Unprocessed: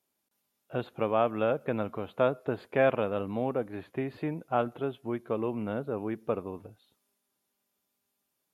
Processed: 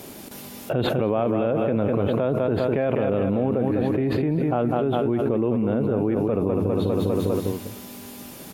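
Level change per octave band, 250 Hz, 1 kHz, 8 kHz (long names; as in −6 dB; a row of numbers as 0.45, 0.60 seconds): +12.0 dB, +4.0 dB, can't be measured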